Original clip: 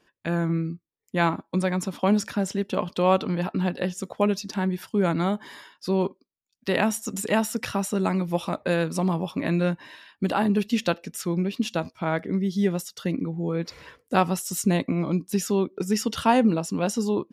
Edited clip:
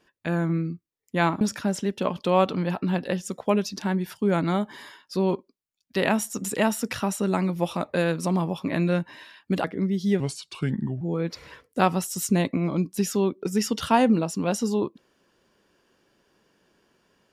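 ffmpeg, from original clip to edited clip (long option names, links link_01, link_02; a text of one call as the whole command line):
ffmpeg -i in.wav -filter_complex "[0:a]asplit=5[link_01][link_02][link_03][link_04][link_05];[link_01]atrim=end=1.412[link_06];[link_02]atrim=start=2.128:end=10.362[link_07];[link_03]atrim=start=12.158:end=12.724[link_08];[link_04]atrim=start=12.72:end=13.36,asetpts=PTS-STARTPTS,asetrate=34839,aresample=44100[link_09];[link_05]atrim=start=13.356[link_10];[link_06][link_07]acrossfade=duration=0.004:curve1=hsin:curve2=hsin[link_11];[link_11][link_08]acrossfade=duration=0.004:curve1=hsin:curve2=hsin[link_12];[link_12][link_09]acrossfade=duration=0.004:curve1=hsin:curve2=hsin[link_13];[link_13][link_10]acrossfade=duration=0.004:curve1=hsin:curve2=hsin" out.wav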